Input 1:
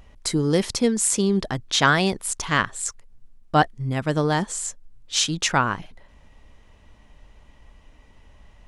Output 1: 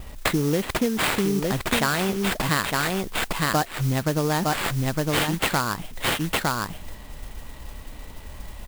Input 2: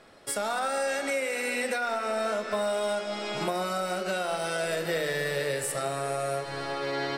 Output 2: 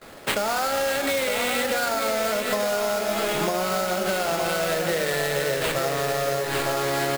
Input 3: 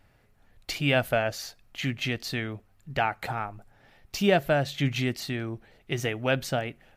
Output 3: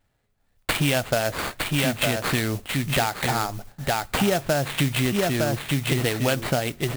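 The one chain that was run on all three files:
sample-rate reducer 5900 Hz, jitter 20%; on a send: echo 0.909 s -6.5 dB; on the sum: gate with hold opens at -46 dBFS; modulation noise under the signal 17 dB; compressor 6:1, threshold -32 dBFS; match loudness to -24 LUFS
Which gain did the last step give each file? +11.0, +11.0, +12.5 dB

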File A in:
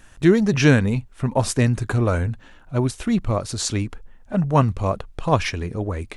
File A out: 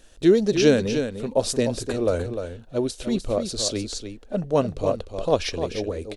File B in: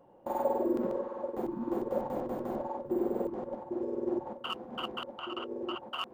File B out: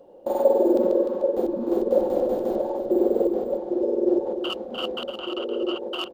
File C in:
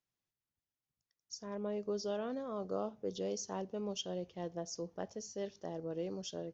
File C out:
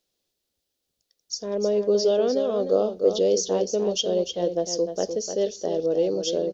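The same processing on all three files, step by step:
graphic EQ 125/500/1000/2000/4000 Hz -11/+9/-8/-6/+7 dB; echo 0.301 s -8 dB; match loudness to -24 LUFS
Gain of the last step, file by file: -3.0, +7.0, +12.5 dB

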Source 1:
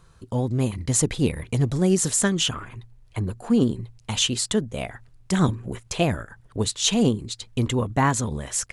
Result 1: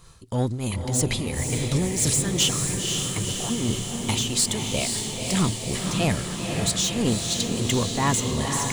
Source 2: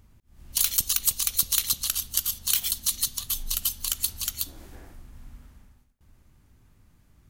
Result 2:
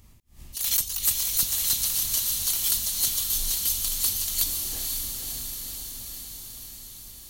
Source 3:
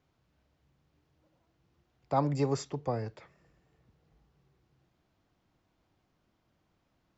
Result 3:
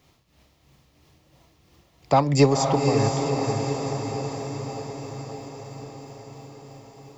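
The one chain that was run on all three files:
high shelf 2500 Hz +9 dB; notch 1500 Hz, Q 6.5; in parallel at -2 dB: negative-ratio compressor -23 dBFS; on the sum: soft clip -12 dBFS; tremolo triangle 3 Hz, depth 75%; on a send: diffused feedback echo 0.512 s, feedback 69%, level -4 dB; on the sum: match loudness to -24 LUFS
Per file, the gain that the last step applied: -2.5, -3.5, +9.5 dB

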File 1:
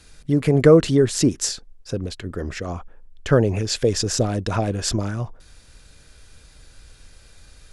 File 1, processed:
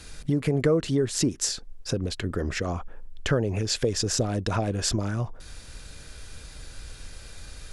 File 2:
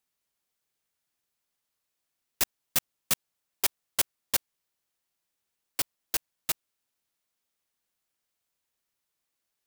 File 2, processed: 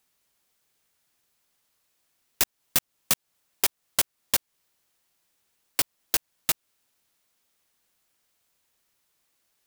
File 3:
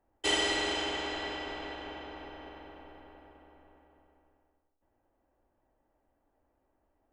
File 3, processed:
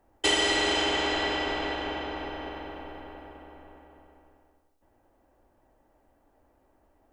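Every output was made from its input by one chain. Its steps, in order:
compressor 2.5:1, threshold -33 dBFS; match loudness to -27 LUFS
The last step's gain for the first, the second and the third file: +6.0, +10.0, +10.0 dB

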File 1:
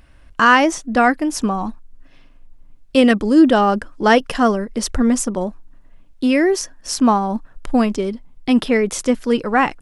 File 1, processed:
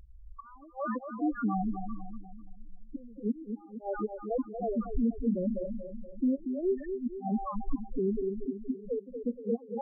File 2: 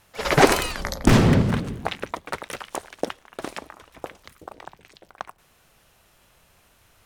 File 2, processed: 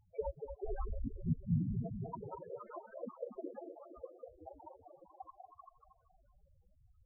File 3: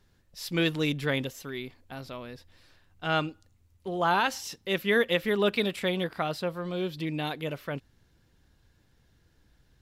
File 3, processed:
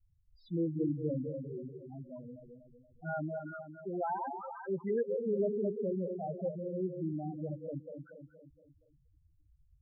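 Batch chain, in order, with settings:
delay with a stepping band-pass 0.194 s, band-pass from 530 Hz, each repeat 1.4 oct, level -6 dB; flipped gate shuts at -7 dBFS, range -33 dB; limiter -16.5 dBFS; air absorption 310 m; darkening echo 0.235 s, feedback 53%, low-pass 2300 Hz, level -7 dB; loudest bins only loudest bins 4; gain -2.5 dB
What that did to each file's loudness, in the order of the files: -17.0, -20.0, -7.5 LU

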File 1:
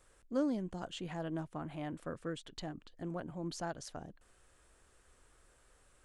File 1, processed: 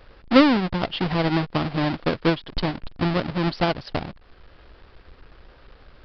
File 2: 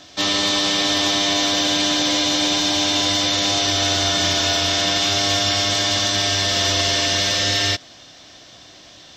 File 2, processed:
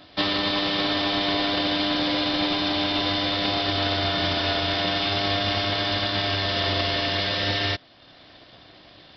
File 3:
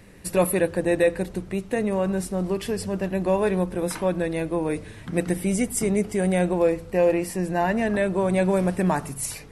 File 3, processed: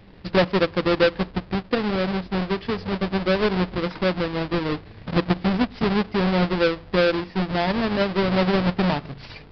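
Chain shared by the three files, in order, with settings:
half-waves squared off; downsampling 11025 Hz; transient shaper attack +4 dB, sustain -4 dB; match loudness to -23 LUFS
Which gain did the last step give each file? +12.5, -8.0, -4.0 dB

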